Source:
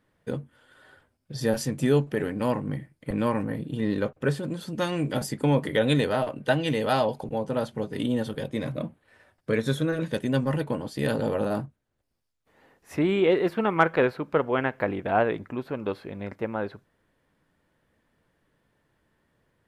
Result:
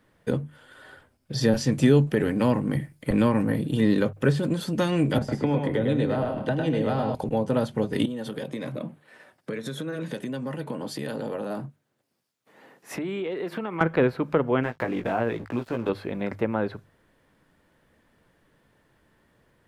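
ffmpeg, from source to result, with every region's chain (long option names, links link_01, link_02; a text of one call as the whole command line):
ffmpeg -i in.wav -filter_complex "[0:a]asettb=1/sr,asplit=3[link_01][link_02][link_03];[link_01]atrim=end=1.334[link_04];[link_02]atrim=start=1.33:end=4.48,asetpts=PTS-STARTPTS,afade=type=in:duration=0.004:curve=qsin,afade=type=out:start_time=3.146:duration=0.004:curve=qsin,acrossover=split=5900[link_05][link_06];[link_06]acompressor=threshold=-60dB:ratio=4:attack=1:release=60[link_07];[link_05][link_07]amix=inputs=2:normalize=0,highshelf=frequency=5000:gain=8[link_08];[link_03]atrim=start=4.476[link_09];[link_04][link_08]acrossfade=duration=0.004:curve1=hsin:curve2=qsin[link_10];[link_10][link_09]acrossfade=duration=0.004:curve1=qsin:curve2=hsin,asettb=1/sr,asplit=3[link_11][link_12][link_13];[link_11]atrim=end=5.184[link_14];[link_12]atrim=start=5.18:end=7.15,asetpts=PTS-STARTPTS,afade=type=in:duration=0.004:curve=qsin,afade=type=out:start_time=1.966:duration=0.004:curve=qsin,acrossover=split=210|1400|5500[link_15][link_16][link_17][link_18];[link_15]acompressor=threshold=-37dB:ratio=3[link_19];[link_16]acompressor=threshold=-33dB:ratio=3[link_20];[link_17]acompressor=threshold=-47dB:ratio=3[link_21];[link_18]acompressor=threshold=-53dB:ratio=3[link_22];[link_19][link_20][link_21][link_22]amix=inputs=4:normalize=0,aemphasis=mode=reproduction:type=75fm,aecho=1:1:103|129|243:0.562|0.282|0.141,atrim=end_sample=86877[link_23];[link_13]atrim=start=7.146[link_24];[link_14][link_23]acrossfade=duration=0.004:curve1=hsin:curve2=qsin[link_25];[link_25][link_24]acrossfade=duration=0.004:curve1=qsin:curve2=hsin,asettb=1/sr,asplit=3[link_26][link_27][link_28];[link_26]atrim=end=8.054[link_29];[link_27]atrim=start=8.05:end=13.81,asetpts=PTS-STARTPTS,afade=type=in:duration=0.004:curve=qsin,afade=type=out:start_time=5.756:duration=0.004:curve=qsin,acompressor=threshold=-33dB:ratio=16:attack=3.2:release=140:knee=1:detection=peak,highpass=frequency=130:width=0.5412,highpass=frequency=130:width=1.3066[link_30];[link_28]atrim=start=13.806[link_31];[link_29][link_30]acrossfade=duration=0.004:curve1=hsin:curve2=qsin[link_32];[link_32][link_31]acrossfade=duration=0.004:curve1=qsin:curve2=hsin,asettb=1/sr,asplit=3[link_33][link_34][link_35];[link_33]atrim=end=14.634[link_36];[link_34]atrim=start=14.63:end=15.89,asetpts=PTS-STARTPTS,afade=type=in:duration=0.004:curve=qsin,afade=type=out:start_time=1.256:duration=0.004:curve=qsin,aeval=exprs='sgn(val(0))*max(abs(val(0))-0.00355,0)':channel_layout=same,acompressor=threshold=-36dB:ratio=1.5:attack=3.2:release=140:knee=1:detection=peak,asplit=2[link_37][link_38];[link_38]adelay=17,volume=-5dB[link_39];[link_37][link_39]amix=inputs=2:normalize=0,atrim=end_sample=55566[link_40];[link_35]atrim=start=15.886[link_41];[link_36][link_40]acrossfade=duration=0.004:curve1=hsin:curve2=qsin[link_42];[link_42][link_41]acrossfade=duration=0.004:curve1=qsin:curve2=hsin,bandreject=frequency=50:width_type=h:width=6,bandreject=frequency=100:width_type=h:width=6,bandreject=frequency=150:width_type=h:width=6,acrossover=split=330[link_43][link_44];[link_44]acompressor=threshold=-33dB:ratio=2.5[link_45];[link_43][link_45]amix=inputs=2:normalize=0,volume=6.5dB" out.wav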